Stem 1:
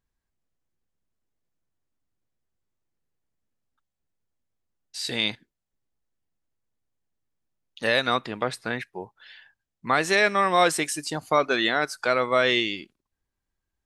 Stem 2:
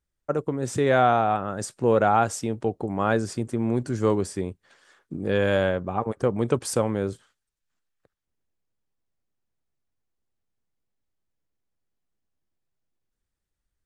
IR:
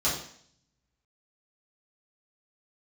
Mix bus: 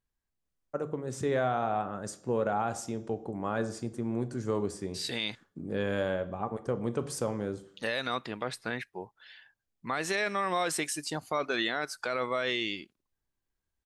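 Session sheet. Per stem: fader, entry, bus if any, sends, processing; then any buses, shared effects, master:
−4.5 dB, 0.00 s, no send, no processing
−8.5 dB, 0.45 s, send −20.5 dB, no processing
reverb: on, RT60 0.60 s, pre-delay 3 ms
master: brickwall limiter −19 dBFS, peak gain reduction 7.5 dB

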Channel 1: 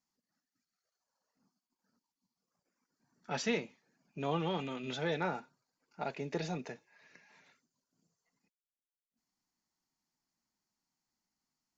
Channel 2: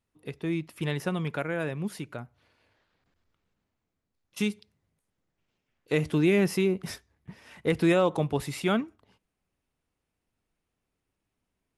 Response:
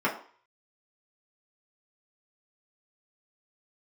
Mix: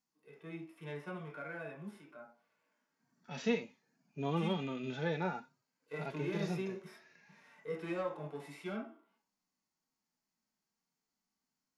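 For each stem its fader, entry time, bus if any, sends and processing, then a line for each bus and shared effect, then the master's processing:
+2.0 dB, 0.00 s, no send, no processing
−16.0 dB, 0.00 s, send −3.5 dB, low-shelf EQ 350 Hz −11 dB; soft clipping −23.5 dBFS, distortion −14 dB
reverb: on, RT60 0.45 s, pre-delay 3 ms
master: harmonic and percussive parts rebalanced percussive −18 dB

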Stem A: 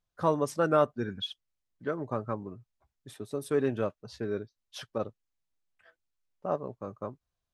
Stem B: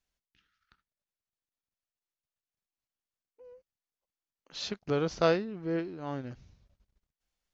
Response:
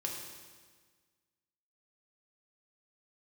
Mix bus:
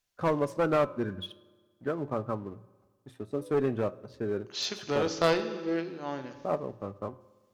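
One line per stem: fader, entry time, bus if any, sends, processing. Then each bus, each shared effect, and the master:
+2.0 dB, 0.00 s, send −18 dB, high-shelf EQ 2,700 Hz −11 dB; leveller curve on the samples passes 1; flanger 0.48 Hz, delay 6.8 ms, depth 4.7 ms, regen +85%
−0.5 dB, 0.00 s, send −5 dB, high-pass filter 360 Hz 6 dB per octave; high-shelf EQ 3,900 Hz +4.5 dB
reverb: on, RT60 1.5 s, pre-delay 3 ms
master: mains-hum notches 60/120/180 Hz; asymmetric clip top −24.5 dBFS, bottom −10 dBFS

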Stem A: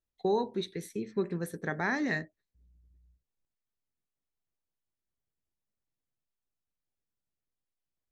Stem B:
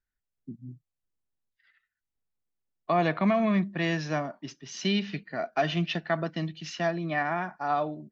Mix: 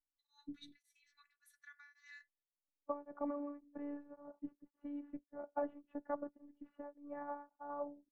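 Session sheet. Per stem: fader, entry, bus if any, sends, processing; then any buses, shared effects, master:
−12.5 dB, 0.00 s, no send, Butterworth high-pass 1,200 Hz 48 dB per octave; brickwall limiter −29.5 dBFS, peak gain reduction 8 dB
−4.0 dB, 0.00 s, no send, low-pass filter 1,000 Hz 24 dB per octave; harmonic and percussive parts rebalanced harmonic −9 dB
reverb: not used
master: phases set to zero 289 Hz; tremolo along a rectified sine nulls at 1.8 Hz

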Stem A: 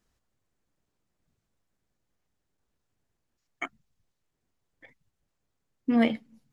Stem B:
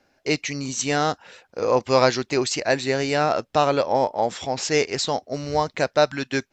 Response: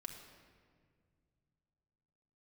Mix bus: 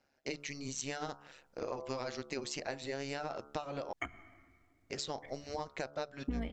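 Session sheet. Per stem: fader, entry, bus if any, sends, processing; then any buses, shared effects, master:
−1.5 dB, 0.40 s, send −6 dB, sub-octave generator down 2 octaves, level +3 dB
−8.0 dB, 0.00 s, muted 0:03.93–0:04.90, no send, hum removal 72.51 Hz, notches 20; amplitude modulation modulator 140 Hz, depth 70%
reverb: on, RT60 2.0 s, pre-delay 4 ms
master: downward compressor 8 to 1, threshold −35 dBFS, peak gain reduction 20.5 dB

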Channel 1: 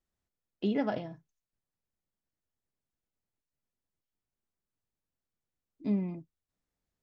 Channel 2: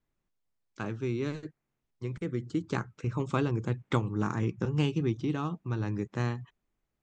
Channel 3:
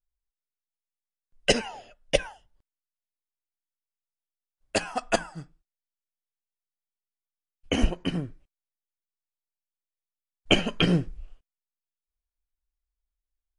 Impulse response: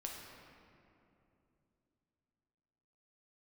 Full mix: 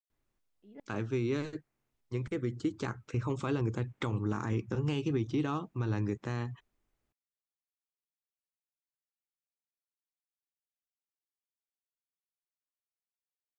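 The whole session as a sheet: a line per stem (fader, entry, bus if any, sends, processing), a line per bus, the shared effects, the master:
−17.0 dB, 0.00 s, no send, high-shelf EQ 3,700 Hz −11.5 dB; tremolo with a ramp in dB swelling 2.5 Hz, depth 37 dB
+1.5 dB, 0.10 s, no send, parametric band 170 Hz −12.5 dB 0.23 octaves
muted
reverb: not used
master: brickwall limiter −22.5 dBFS, peak gain reduction 10.5 dB

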